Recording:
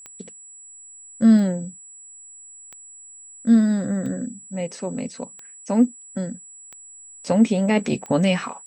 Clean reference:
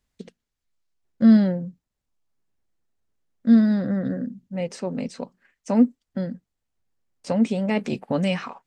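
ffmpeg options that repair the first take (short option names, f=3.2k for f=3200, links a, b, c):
-af "adeclick=t=4,bandreject=f=7.8k:w=30,asetnsamples=n=441:p=0,asendcmd='6.98 volume volume -4dB',volume=0dB"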